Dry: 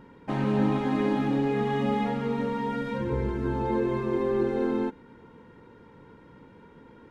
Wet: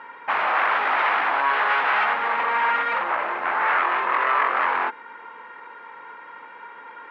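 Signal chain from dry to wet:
sine wavefolder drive 15 dB, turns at −12.5 dBFS
flat-topped band-pass 1,500 Hz, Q 0.91

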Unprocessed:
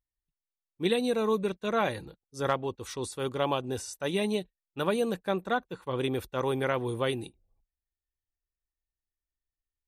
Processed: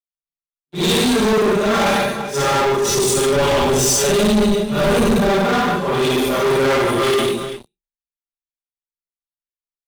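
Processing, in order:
random phases in long frames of 200 ms
dynamic equaliser 6,500 Hz, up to +7 dB, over −57 dBFS, Q 1.4
comb filter 5 ms, depth 90%
multi-tap delay 52/148/391 ms −3.5/−4.5/−15 dB
leveller curve on the samples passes 5
0:02.88–0:05.30: low-shelf EQ 150 Hz +11 dB
soft clipping −9.5 dBFS, distortion −18 dB
multiband upward and downward expander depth 40%
level −1.5 dB

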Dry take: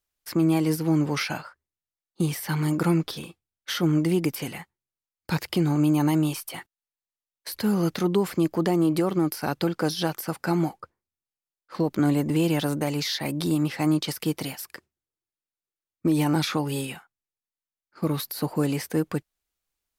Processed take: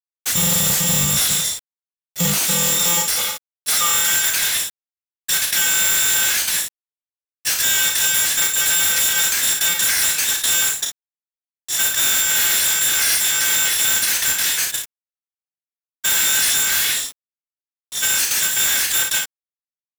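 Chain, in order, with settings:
samples in bit-reversed order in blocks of 128 samples
low-pass filter 8,900 Hz 12 dB per octave
tilt shelving filter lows −8 dB
soft clipping −22.5 dBFS, distortion −10 dB
high-pass filter sweep 74 Hz → 1,200 Hz, 0:01.44–0:04.15
formants moved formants +5 semitones
ambience of single reflections 34 ms −12.5 dB, 55 ms −16.5 dB
bit reduction 11 bits
power curve on the samples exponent 0.35

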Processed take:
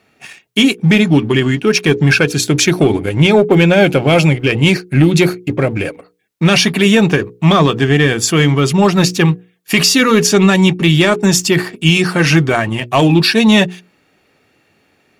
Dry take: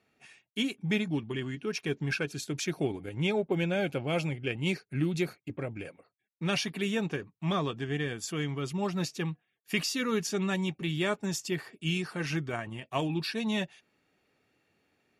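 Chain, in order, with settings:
leveller curve on the samples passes 1
mains-hum notches 60/120/180/240/300/360/420/480 Hz
boost into a limiter +19.5 dB
level −1 dB

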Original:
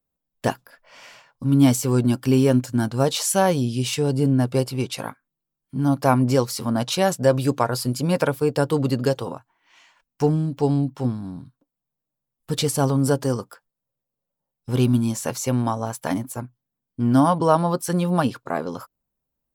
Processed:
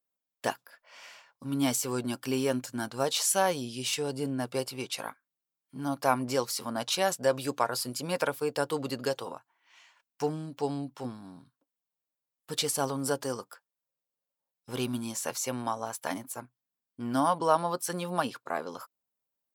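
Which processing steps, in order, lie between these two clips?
high-pass filter 720 Hz 6 dB per octave
level −3.5 dB

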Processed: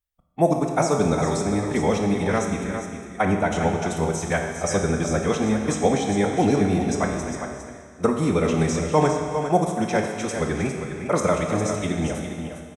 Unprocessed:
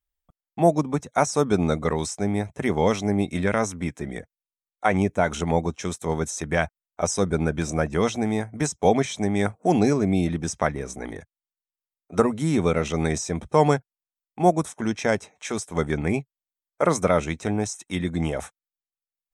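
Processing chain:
multi-tap delay 553/614 ms −16.5/−8 dB
four-comb reverb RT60 2.8 s, combs from 29 ms, DRR 3 dB
phase-vocoder stretch with locked phases 0.66×

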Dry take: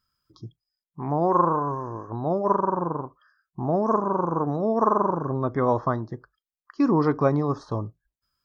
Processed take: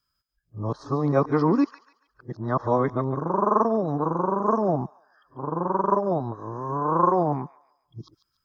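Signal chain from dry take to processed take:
played backwards from end to start
delay with a high-pass on its return 143 ms, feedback 34%, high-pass 1,600 Hz, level −11 dB

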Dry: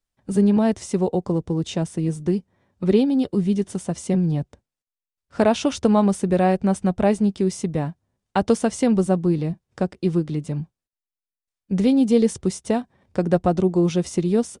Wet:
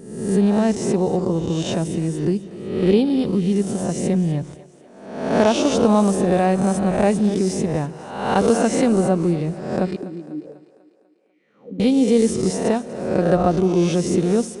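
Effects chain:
peak hold with a rise ahead of every peak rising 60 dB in 0.87 s
0:09.96–0:11.80: envelope filter 260–2,500 Hz, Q 6.9, down, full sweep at −18.5 dBFS
echo with a time of its own for lows and highs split 300 Hz, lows 84 ms, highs 247 ms, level −16 dB

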